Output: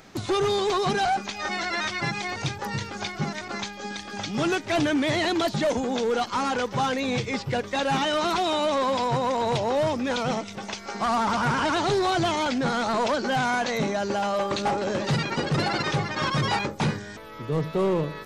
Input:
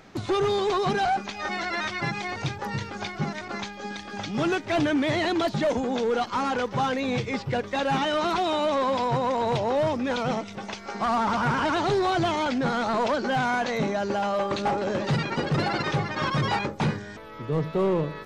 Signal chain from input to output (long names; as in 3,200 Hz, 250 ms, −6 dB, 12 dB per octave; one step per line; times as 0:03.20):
high-shelf EQ 5,000 Hz +9.5 dB